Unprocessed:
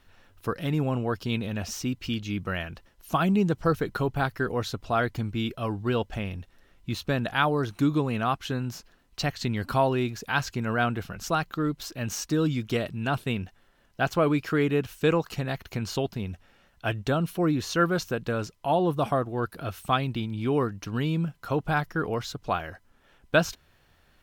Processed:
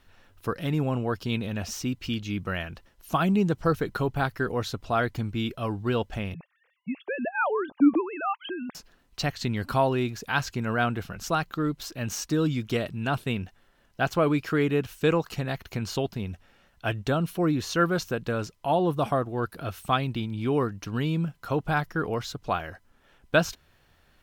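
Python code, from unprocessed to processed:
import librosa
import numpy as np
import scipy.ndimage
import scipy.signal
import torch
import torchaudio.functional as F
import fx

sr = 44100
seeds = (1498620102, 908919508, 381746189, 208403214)

y = fx.sine_speech(x, sr, at=(6.34, 8.75))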